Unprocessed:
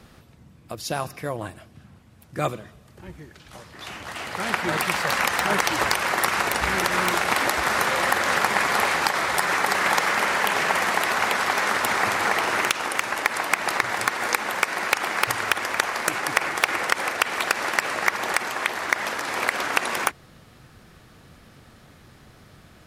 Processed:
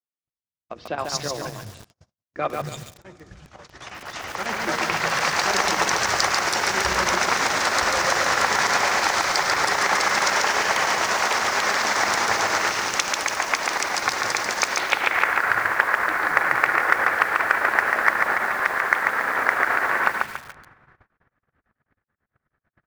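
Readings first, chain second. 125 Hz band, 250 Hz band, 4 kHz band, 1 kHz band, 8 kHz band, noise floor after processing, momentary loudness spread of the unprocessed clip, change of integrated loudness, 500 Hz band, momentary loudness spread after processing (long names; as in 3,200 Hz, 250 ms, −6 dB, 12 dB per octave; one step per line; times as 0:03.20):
−1.5 dB, −1.5 dB, +2.0 dB, +2.0 dB, +3.0 dB, below −85 dBFS, 8 LU, +2.0 dB, +1.0 dB, 10 LU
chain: three-band delay without the direct sound mids, lows, highs 230/290 ms, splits 190/3,000 Hz
square-wave tremolo 9.2 Hz, depth 65%, duty 75%
mains-hum notches 60/120/180/240/300/360/420/480 Hz
low-pass filter sweep 6,000 Hz → 1,700 Hz, 0:14.65–0:15.28
in parallel at −5.5 dB: hard clipping −15.5 dBFS, distortion −9 dB
on the sum: four-comb reverb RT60 3.8 s, combs from 31 ms, DRR 17.5 dB
noise gate −42 dBFS, range −54 dB
feedback echo at a low word length 141 ms, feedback 35%, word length 6 bits, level −3 dB
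level −3 dB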